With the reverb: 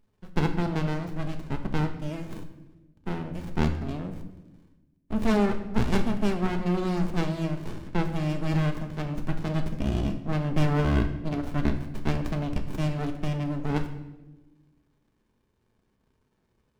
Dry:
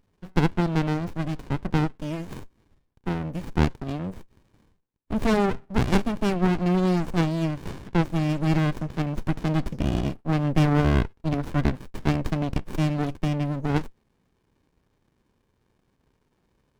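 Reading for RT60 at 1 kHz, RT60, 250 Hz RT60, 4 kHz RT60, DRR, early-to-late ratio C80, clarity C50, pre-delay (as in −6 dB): 0.90 s, 1.1 s, 1.7 s, 0.80 s, 5.0 dB, 12.0 dB, 10.0 dB, 5 ms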